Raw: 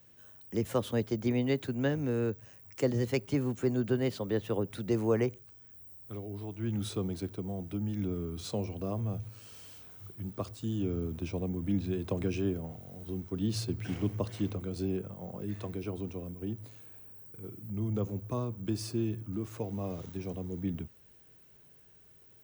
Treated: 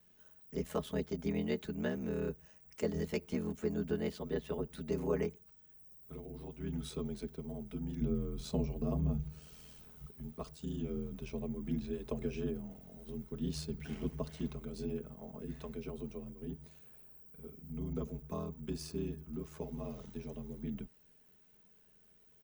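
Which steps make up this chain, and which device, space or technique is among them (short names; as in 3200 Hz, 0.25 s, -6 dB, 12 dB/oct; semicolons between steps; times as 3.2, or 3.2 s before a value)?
8.01–10.06 low shelf 330 Hz +9.5 dB; ring-modulated robot voice (ring modulator 41 Hz; comb 4.7 ms, depth 63%); gain -4.5 dB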